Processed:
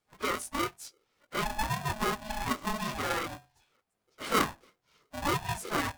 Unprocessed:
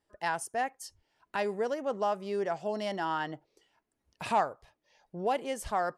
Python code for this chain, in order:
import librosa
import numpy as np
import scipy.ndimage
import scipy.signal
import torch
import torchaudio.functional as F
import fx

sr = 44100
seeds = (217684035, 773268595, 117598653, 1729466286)

y = fx.phase_scramble(x, sr, seeds[0], window_ms=50)
y = fx.hum_notches(y, sr, base_hz=50, count=8)
y = y * np.sign(np.sin(2.0 * np.pi * 430.0 * np.arange(len(y)) / sr))